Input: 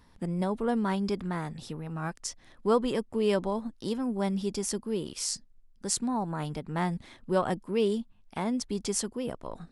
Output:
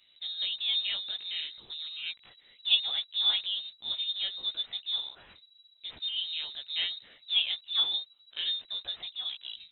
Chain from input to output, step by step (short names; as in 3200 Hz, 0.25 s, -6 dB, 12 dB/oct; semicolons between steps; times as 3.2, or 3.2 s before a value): block floating point 5-bit; low shelf 240 Hz -10.5 dB; chorus voices 2, 1.1 Hz, delay 16 ms, depth 3.2 ms; high shelf 2400 Hz -11 dB; inverted band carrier 3900 Hz; gain +4 dB